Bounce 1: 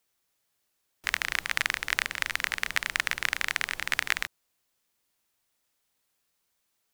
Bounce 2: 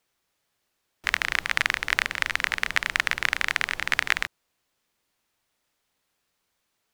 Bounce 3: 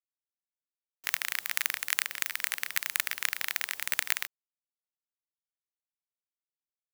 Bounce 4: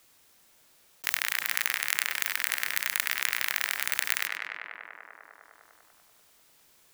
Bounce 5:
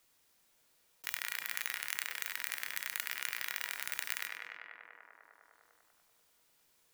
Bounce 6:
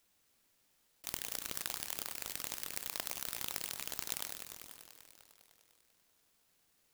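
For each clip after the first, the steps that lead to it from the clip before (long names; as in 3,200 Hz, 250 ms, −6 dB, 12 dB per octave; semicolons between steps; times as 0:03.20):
high-shelf EQ 6,200 Hz −9.5 dB; level +5 dB
log-companded quantiser 4 bits; RIAA equalisation recording; level −12 dB
tape delay 99 ms, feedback 78%, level −6.5 dB, low-pass 2,800 Hz; envelope flattener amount 50%; level −1 dB
tuned comb filter 480 Hz, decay 0.51 s, mix 70%
short delay modulated by noise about 4,300 Hz, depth 0.36 ms; level −1 dB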